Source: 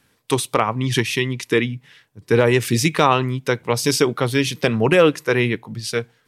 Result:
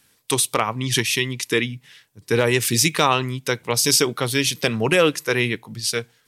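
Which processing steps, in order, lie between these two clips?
treble shelf 3 kHz +12 dB; trim -4 dB

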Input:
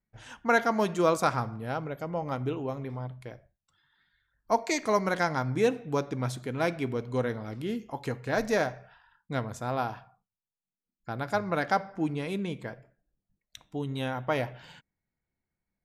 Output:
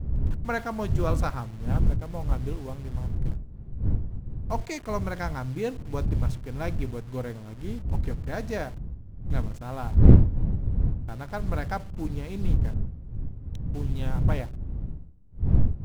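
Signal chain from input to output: send-on-delta sampling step -38 dBFS; wind noise 120 Hz -27 dBFS; bass shelf 150 Hz +11 dB; loudspeaker Doppler distortion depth 0.91 ms; trim -6.5 dB

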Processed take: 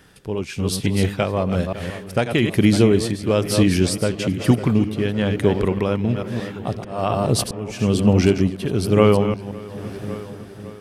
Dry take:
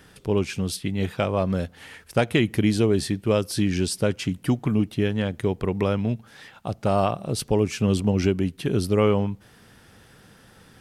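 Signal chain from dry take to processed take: chunks repeated in reverse 173 ms, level -8 dB; 6.68–7.79 s: slow attack 373 ms; filtered feedback delay 556 ms, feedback 80%, low-pass 4.1 kHz, level -17.5 dB; level rider gain up to 8 dB; tremolo 1.1 Hz, depth 46%

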